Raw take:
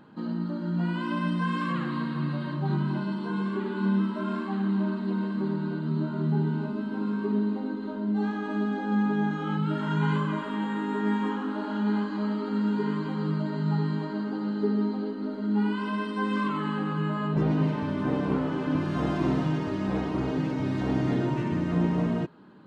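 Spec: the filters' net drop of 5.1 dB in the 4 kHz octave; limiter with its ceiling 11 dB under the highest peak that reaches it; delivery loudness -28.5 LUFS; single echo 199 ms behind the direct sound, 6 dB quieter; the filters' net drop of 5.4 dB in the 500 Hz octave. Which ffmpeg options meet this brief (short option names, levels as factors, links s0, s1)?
-af "equalizer=f=500:t=o:g=-7.5,equalizer=f=4000:t=o:g=-7,alimiter=level_in=1.33:limit=0.0631:level=0:latency=1,volume=0.75,aecho=1:1:199:0.501,volume=1.58"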